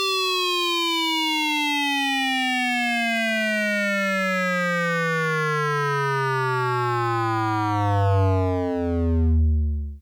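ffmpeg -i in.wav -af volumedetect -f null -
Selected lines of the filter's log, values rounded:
mean_volume: -22.2 dB
max_volume: -15.8 dB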